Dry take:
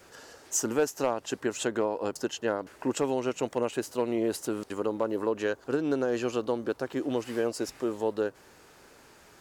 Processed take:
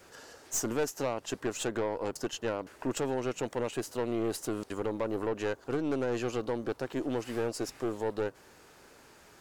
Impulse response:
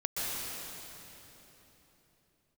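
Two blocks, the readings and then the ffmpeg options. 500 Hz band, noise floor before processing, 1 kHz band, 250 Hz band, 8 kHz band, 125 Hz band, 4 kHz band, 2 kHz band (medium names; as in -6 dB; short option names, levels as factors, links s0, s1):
-3.5 dB, -56 dBFS, -3.0 dB, -3.5 dB, -3.0 dB, +1.5 dB, -2.0 dB, -3.0 dB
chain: -af "aeval=exprs='(tanh(17.8*val(0)+0.4)-tanh(0.4))/17.8':c=same"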